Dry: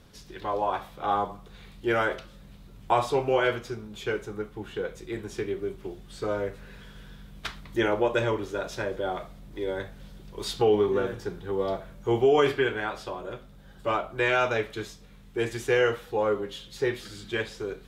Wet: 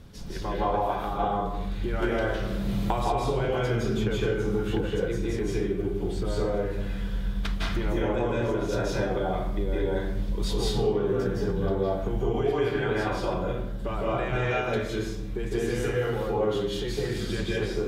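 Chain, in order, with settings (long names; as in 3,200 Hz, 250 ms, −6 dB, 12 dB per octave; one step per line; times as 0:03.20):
low-shelf EQ 310 Hz +9 dB
brickwall limiter −18.5 dBFS, peak gain reduction 10.5 dB
downward compressor, threshold −30 dBFS, peak gain reduction 8 dB
convolution reverb RT60 0.75 s, pre-delay 153 ms, DRR −5.5 dB
0:02.02–0:04.81: multiband upward and downward compressor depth 100%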